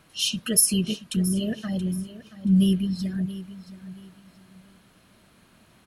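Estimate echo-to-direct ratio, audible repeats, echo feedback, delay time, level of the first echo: -14.5 dB, 2, 29%, 0.677 s, -15.0 dB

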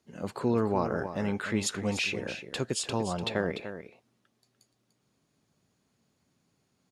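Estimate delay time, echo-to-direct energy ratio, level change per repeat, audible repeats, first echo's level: 0.295 s, -10.5 dB, no steady repeat, 1, -10.5 dB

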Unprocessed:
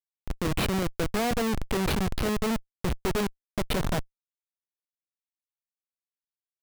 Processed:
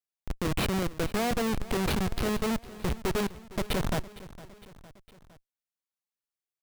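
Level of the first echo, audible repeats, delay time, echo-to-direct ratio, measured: -18.0 dB, 3, 0.459 s, -16.5 dB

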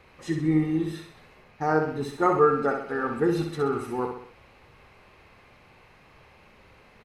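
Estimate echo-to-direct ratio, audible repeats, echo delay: -5.0 dB, 4, 64 ms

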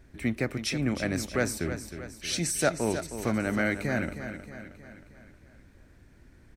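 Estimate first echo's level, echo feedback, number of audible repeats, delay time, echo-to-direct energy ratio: -10.0 dB, 52%, 5, 0.314 s, -8.5 dB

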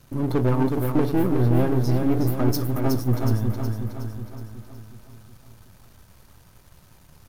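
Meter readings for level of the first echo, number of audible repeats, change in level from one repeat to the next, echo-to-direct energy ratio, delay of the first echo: -5.0 dB, 6, -5.5 dB, -3.5 dB, 0.368 s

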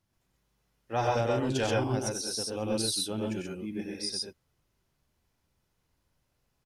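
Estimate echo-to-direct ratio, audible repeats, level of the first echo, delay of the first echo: 1.0 dB, 2, -4.5 dB, 95 ms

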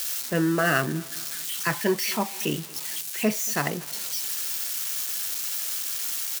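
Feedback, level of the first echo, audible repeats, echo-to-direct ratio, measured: 48%, -23.5 dB, 2, -22.5 dB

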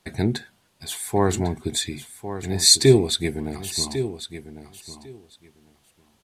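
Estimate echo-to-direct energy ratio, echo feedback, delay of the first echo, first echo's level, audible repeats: -11.5 dB, 15%, 1.1 s, -11.5 dB, 2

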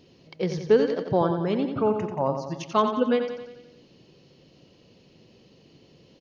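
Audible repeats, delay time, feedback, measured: 6, 89 ms, 56%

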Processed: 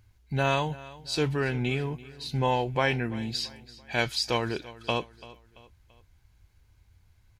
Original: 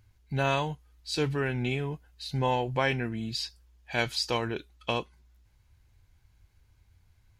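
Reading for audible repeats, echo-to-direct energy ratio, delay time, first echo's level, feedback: 3, -18.0 dB, 0.337 s, -19.0 dB, 43%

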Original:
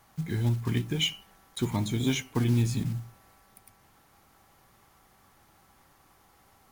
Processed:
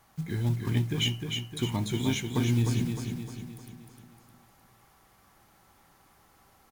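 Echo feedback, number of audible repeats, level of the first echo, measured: 49%, 5, -5.0 dB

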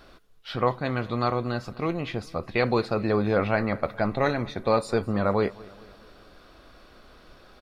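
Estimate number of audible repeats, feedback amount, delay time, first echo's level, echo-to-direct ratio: 3, 55%, 0.215 s, -22.5 dB, -21.0 dB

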